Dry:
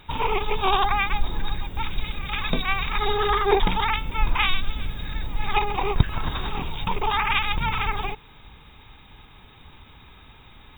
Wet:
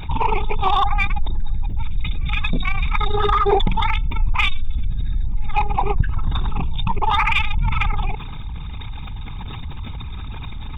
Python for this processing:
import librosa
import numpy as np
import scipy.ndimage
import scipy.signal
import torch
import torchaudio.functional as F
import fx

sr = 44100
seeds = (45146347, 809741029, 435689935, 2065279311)

p1 = fx.envelope_sharpen(x, sr, power=2.0)
p2 = 10.0 ** (-22.0 / 20.0) * np.tanh(p1 / 10.0 ** (-22.0 / 20.0))
p3 = p1 + F.gain(torch.from_numpy(p2), -8.0).numpy()
y = fx.env_flatten(p3, sr, amount_pct=50)